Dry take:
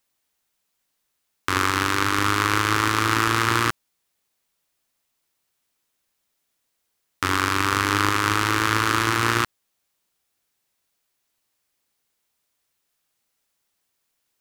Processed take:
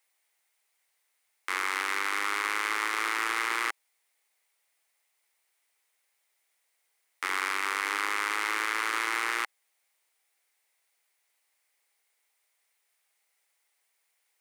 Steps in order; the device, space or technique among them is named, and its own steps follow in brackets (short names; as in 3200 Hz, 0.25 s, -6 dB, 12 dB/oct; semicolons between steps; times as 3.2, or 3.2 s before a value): laptop speaker (HPF 410 Hz 24 dB/oct; bell 810 Hz +4.5 dB 0.27 oct; bell 2100 Hz +10 dB 0.44 oct; limiter -13.5 dBFS, peak gain reduction 12.5 dB); bell 9200 Hz +6 dB 0.27 oct; gain -2 dB